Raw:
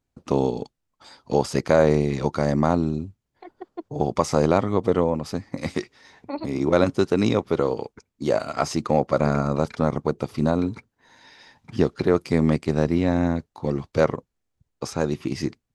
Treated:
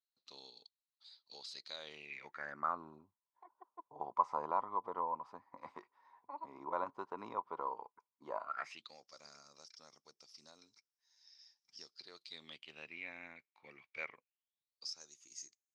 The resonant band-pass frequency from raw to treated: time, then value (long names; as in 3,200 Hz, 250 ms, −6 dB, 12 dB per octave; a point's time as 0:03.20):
resonant band-pass, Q 11
0:01.69 4,100 Hz
0:02.85 990 Hz
0:08.43 990 Hz
0:08.97 5,400 Hz
0:11.84 5,400 Hz
0:13.03 2,300 Hz
0:14.17 2,300 Hz
0:15.13 6,600 Hz